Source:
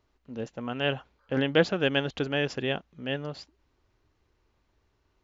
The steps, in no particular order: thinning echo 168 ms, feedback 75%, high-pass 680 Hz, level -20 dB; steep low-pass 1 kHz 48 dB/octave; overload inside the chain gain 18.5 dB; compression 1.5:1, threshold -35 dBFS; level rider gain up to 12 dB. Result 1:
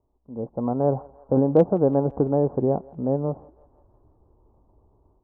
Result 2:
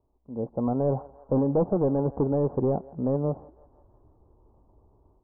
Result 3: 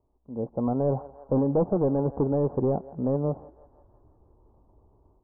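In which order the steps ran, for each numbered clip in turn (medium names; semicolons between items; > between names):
steep low-pass > compression > overload inside the chain > level rider > thinning echo; compression > thinning echo > level rider > overload inside the chain > steep low-pass; thinning echo > compression > level rider > overload inside the chain > steep low-pass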